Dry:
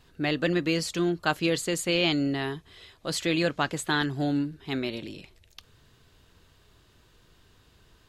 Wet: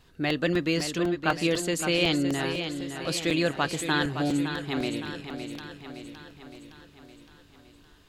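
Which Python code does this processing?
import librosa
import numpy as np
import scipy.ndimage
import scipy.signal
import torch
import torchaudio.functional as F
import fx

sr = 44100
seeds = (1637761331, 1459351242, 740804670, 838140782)

y = fx.lowpass(x, sr, hz=2900.0, slope=12, at=(0.98, 1.41))
y = fx.echo_feedback(y, sr, ms=564, feedback_pct=57, wet_db=-8.5)
y = fx.buffer_crackle(y, sr, first_s=0.3, period_s=0.25, block=128, kind='repeat')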